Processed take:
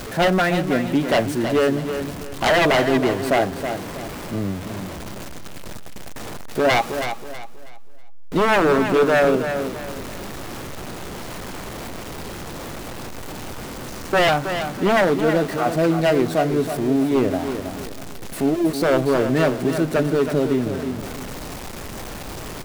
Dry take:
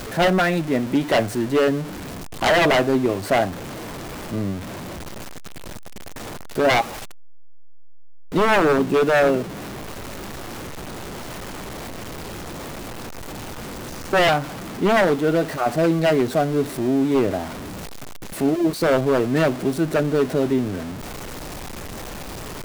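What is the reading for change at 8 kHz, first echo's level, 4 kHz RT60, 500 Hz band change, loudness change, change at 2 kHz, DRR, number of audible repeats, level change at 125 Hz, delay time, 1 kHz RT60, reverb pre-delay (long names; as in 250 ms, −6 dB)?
+0.5 dB, −8.5 dB, no reverb audible, +0.5 dB, 0.0 dB, +0.5 dB, no reverb audible, 3, +0.5 dB, 322 ms, no reverb audible, no reverb audible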